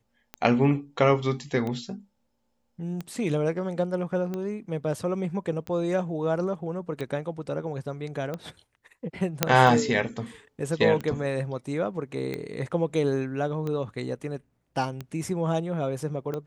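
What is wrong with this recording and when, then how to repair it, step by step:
tick 45 rpm -20 dBFS
9.43 s: pop -2 dBFS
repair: de-click

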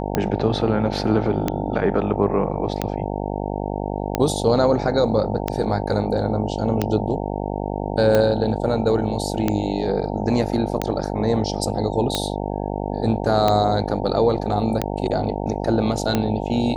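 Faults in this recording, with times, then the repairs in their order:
buzz 50 Hz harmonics 18 -26 dBFS
tick 45 rpm -6 dBFS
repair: de-click; de-hum 50 Hz, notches 18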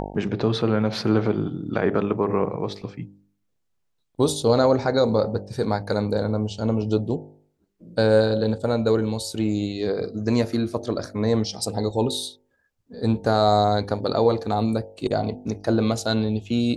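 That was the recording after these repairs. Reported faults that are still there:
nothing left

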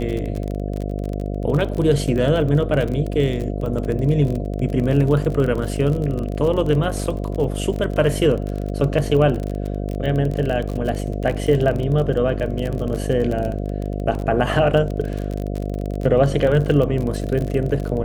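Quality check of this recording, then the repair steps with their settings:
buzz 50 Hz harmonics 14 -25 dBFS
crackle 32 per s -24 dBFS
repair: de-click; de-hum 50 Hz, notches 14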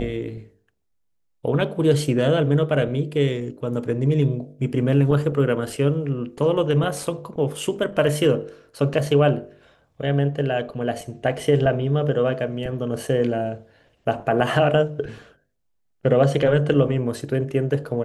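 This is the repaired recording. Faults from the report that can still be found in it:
nothing left

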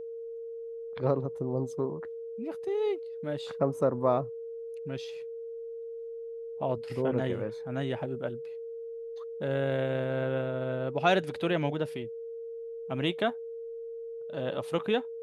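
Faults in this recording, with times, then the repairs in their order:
whine 460 Hz -37 dBFS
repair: band-stop 460 Hz, Q 30

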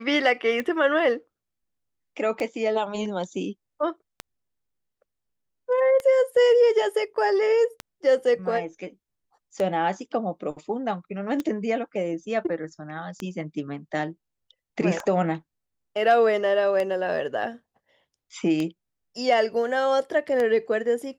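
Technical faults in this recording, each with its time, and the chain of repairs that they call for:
tick 33 1/3 rpm -15 dBFS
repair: de-click

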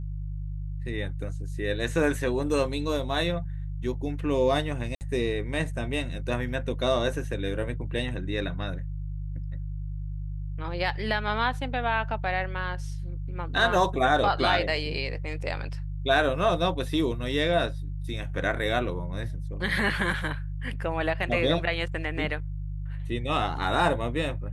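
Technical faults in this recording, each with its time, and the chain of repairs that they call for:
hum 50 Hz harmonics 3 -33 dBFS
4.95–5.01 s: dropout 59 ms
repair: de-hum 50 Hz, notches 3; interpolate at 4.95 s, 59 ms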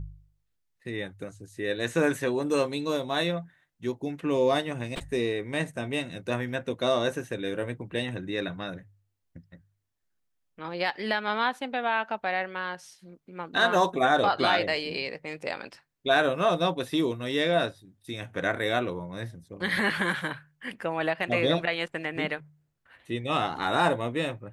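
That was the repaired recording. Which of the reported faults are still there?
nothing left

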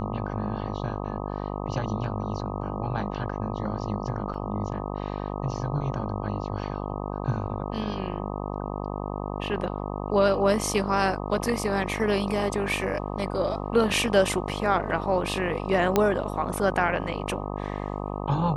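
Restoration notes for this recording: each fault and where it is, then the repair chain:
buzz 50 Hz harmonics 25 -32 dBFS
4.34 s: dropout 3.6 ms
15.96 s: pop -7 dBFS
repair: de-click; de-hum 50 Hz, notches 25; interpolate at 4.34 s, 3.6 ms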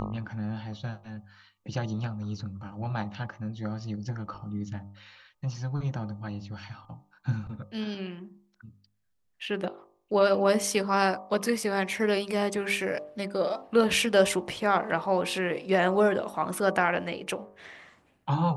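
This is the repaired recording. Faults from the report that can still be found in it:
nothing left

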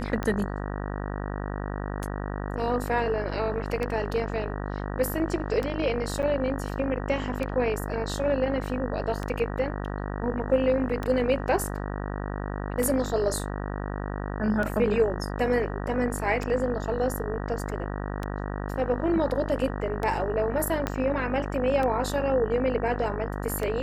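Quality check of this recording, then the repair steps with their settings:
buzz 50 Hz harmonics 38 -32 dBFS
tick 33 1/3 rpm -17 dBFS
6.22–6.23 s: dropout 8.9 ms
20.87 s: pop -12 dBFS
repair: de-click; de-hum 50 Hz, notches 38; interpolate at 6.22 s, 8.9 ms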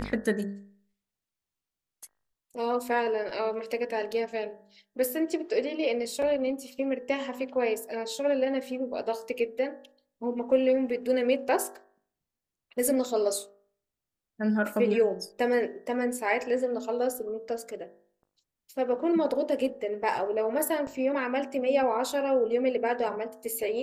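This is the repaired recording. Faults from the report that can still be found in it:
20.87 s: pop

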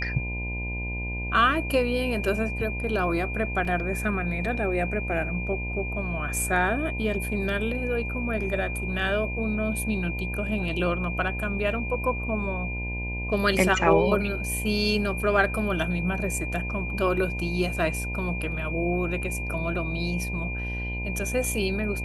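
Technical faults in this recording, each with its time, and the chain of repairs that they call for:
buzz 60 Hz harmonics 17 -32 dBFS
whine 2.4 kHz -33 dBFS
3.65 s: dropout 2.9 ms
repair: band-stop 2.4 kHz, Q 30; de-hum 60 Hz, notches 17; interpolate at 3.65 s, 2.9 ms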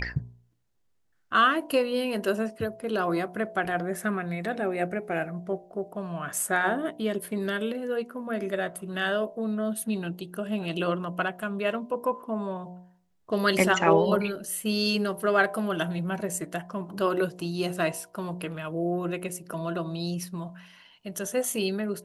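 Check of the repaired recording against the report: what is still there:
nothing left

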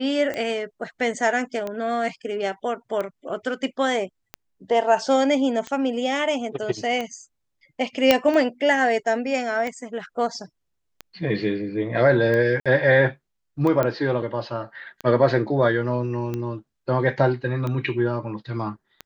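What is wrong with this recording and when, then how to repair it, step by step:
tick 45 rpm -16 dBFS
8.11 s: pop -1 dBFS
12.60–12.66 s: dropout 56 ms
13.83 s: pop -11 dBFS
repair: de-click; interpolate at 12.60 s, 56 ms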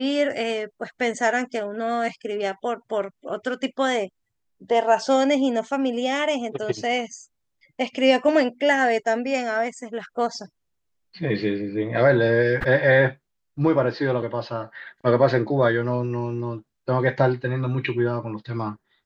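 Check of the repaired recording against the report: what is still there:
nothing left

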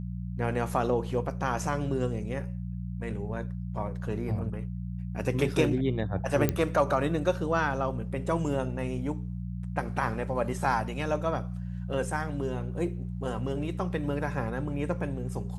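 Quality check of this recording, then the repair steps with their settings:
hum 60 Hz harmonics 3 -35 dBFS
6.49 s: pop -11 dBFS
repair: de-click; de-hum 60 Hz, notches 3

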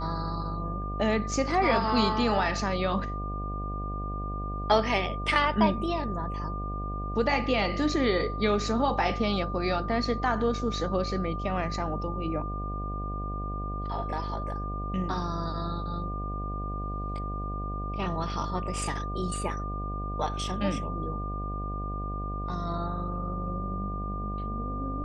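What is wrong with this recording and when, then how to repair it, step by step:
buzz 50 Hz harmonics 15 -34 dBFS
whine 1.2 kHz -36 dBFS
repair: band-stop 1.2 kHz, Q 30; de-hum 50 Hz, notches 15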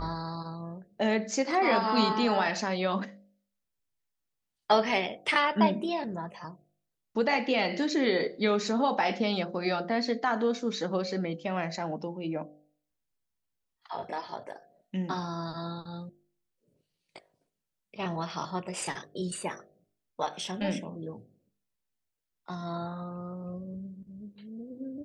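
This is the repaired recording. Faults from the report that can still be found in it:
nothing left

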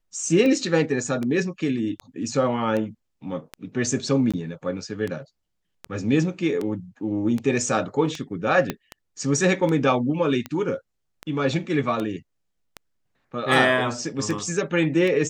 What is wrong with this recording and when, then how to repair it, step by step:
tick 78 rpm -16 dBFS
4.32–4.34 s: dropout 16 ms
8.70 s: pop -10 dBFS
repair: de-click; interpolate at 4.32 s, 16 ms

